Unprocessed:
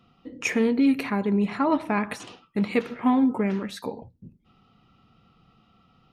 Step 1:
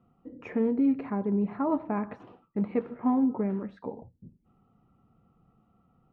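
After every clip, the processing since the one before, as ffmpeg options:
-af "lowpass=1k,volume=-4dB"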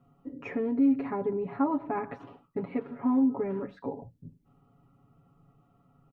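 -af "alimiter=limit=-22.5dB:level=0:latency=1:release=173,aecho=1:1:7.2:0.92"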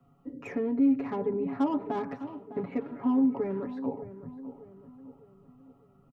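-filter_complex "[0:a]acrossover=split=160|350|860[a][b][c][d];[d]asoftclip=type=tanh:threshold=-38.5dB[e];[a][b][c][e]amix=inputs=4:normalize=0,asplit=2[f][g];[g]adelay=606,lowpass=f=1.5k:p=1,volume=-13dB,asplit=2[h][i];[i]adelay=606,lowpass=f=1.5k:p=1,volume=0.47,asplit=2[j][k];[k]adelay=606,lowpass=f=1.5k:p=1,volume=0.47,asplit=2[l][m];[m]adelay=606,lowpass=f=1.5k:p=1,volume=0.47,asplit=2[n][o];[o]adelay=606,lowpass=f=1.5k:p=1,volume=0.47[p];[f][h][j][l][n][p]amix=inputs=6:normalize=0"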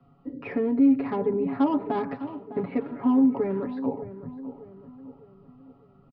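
-af "aresample=11025,aresample=44100,volume=4.5dB"

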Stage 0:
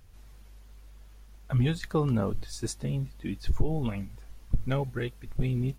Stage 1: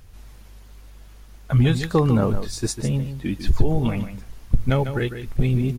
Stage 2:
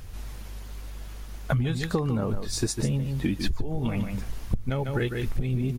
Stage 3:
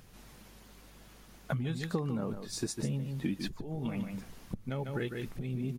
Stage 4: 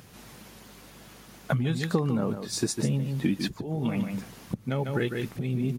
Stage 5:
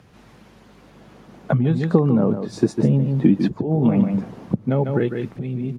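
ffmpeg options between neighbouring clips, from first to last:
-af "aecho=1:1:148:0.316,volume=8dB"
-af "acompressor=threshold=-28dB:ratio=16,volume=6dB"
-af "lowshelf=f=110:t=q:w=1.5:g=-11,volume=-8dB"
-af "highpass=78,volume=7.5dB"
-filter_complex "[0:a]aemphasis=mode=reproduction:type=75fm,acrossover=split=110|960|4800[a][b][c][d];[b]dynaudnorm=f=220:g=11:m=13dB[e];[a][e][c][d]amix=inputs=4:normalize=0"

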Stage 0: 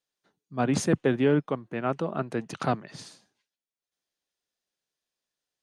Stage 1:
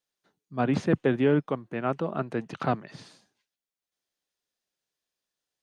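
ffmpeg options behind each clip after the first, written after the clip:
-filter_complex "[0:a]acrossover=split=4000[a][b];[b]acompressor=threshold=-58dB:ratio=4:attack=1:release=60[c];[a][c]amix=inputs=2:normalize=0"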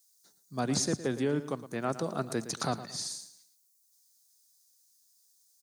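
-af "alimiter=limit=-17.5dB:level=0:latency=1:release=500,aexciter=amount=14.4:drive=5.8:freq=4.4k,aecho=1:1:113|226|339:0.211|0.0719|0.0244,volume=-2.5dB"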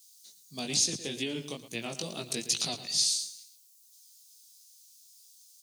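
-af "flanger=delay=17:depth=4.1:speed=2.3,alimiter=level_in=3dB:limit=-24dB:level=0:latency=1:release=250,volume=-3dB,highshelf=f=2k:t=q:w=3:g=12"

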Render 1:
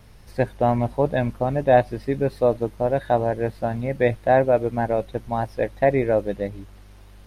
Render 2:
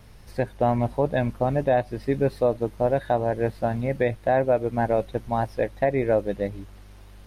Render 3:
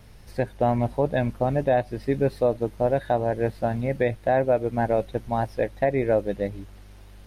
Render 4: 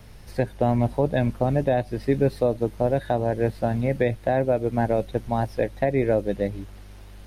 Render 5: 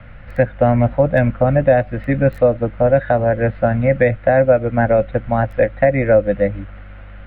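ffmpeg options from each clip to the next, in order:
-af "alimiter=limit=-11.5dB:level=0:latency=1:release=282"
-af "equalizer=f=1.1k:w=2.9:g=-2.5"
-filter_complex "[0:a]acrossover=split=400|3000[a][b][c];[b]acompressor=threshold=-29dB:ratio=2[d];[a][d][c]amix=inputs=3:normalize=0,volume=3dB"
-filter_complex "[0:a]acrossover=split=360|4800[a][b][c];[b]highpass=f=460:w=0.5412,highpass=f=460:w=1.3066,equalizer=f=520:t=q:w=4:g=8,equalizer=f=920:t=q:w=4:g=-6,equalizer=f=1.4k:t=q:w=4:g=9,equalizer=f=2k:t=q:w=4:g=4,lowpass=f=2.8k:w=0.5412,lowpass=f=2.8k:w=1.3066[d];[c]acrusher=bits=6:mix=0:aa=0.000001[e];[a][d][e]amix=inputs=3:normalize=0,volume=7.5dB"

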